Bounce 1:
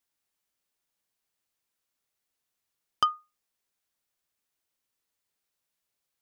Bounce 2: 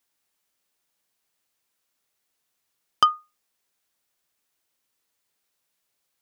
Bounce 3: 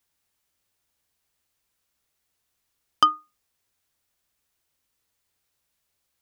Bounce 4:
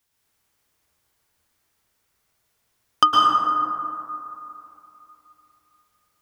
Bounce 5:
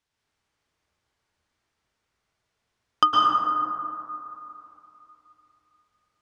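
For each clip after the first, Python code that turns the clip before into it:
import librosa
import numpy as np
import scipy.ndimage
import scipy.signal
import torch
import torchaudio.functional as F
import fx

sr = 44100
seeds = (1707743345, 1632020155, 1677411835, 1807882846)

y1 = fx.low_shelf(x, sr, hz=110.0, db=-6.0)
y1 = y1 * 10.0 ** (6.5 / 20.0)
y2 = fx.octave_divider(y1, sr, octaves=2, level_db=3.0)
y3 = fx.rev_plate(y2, sr, seeds[0], rt60_s=3.0, hf_ratio=0.3, predelay_ms=100, drr_db=-5.0)
y3 = y3 * 10.0 ** (2.0 / 20.0)
y4 = fx.air_absorb(y3, sr, metres=88.0)
y4 = y4 * 10.0 ** (-2.5 / 20.0)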